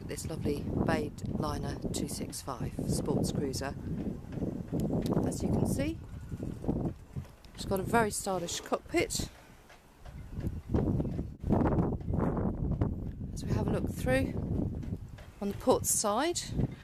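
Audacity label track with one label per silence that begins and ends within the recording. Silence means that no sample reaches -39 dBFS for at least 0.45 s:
9.270000	10.060000	silence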